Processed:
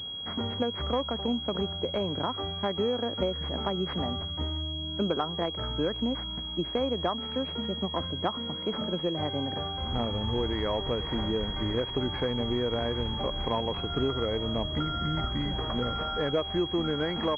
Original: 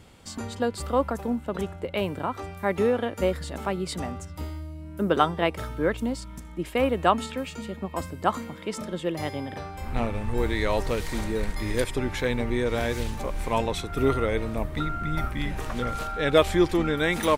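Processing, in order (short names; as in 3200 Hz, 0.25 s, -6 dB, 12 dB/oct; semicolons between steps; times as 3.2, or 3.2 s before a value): HPF 54 Hz; compressor 6:1, threshold -27 dBFS, peak gain reduction 13.5 dB; pulse-width modulation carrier 3300 Hz; gain +2 dB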